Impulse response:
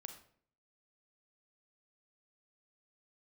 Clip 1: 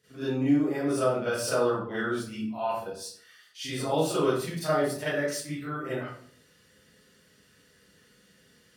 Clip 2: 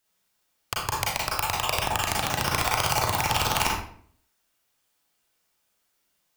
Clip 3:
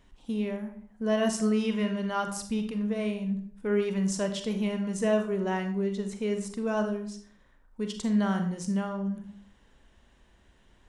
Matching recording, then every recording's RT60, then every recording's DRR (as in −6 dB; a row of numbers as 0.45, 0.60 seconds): 3; 0.55, 0.55, 0.55 seconds; −14.0, −4.0, 5.5 decibels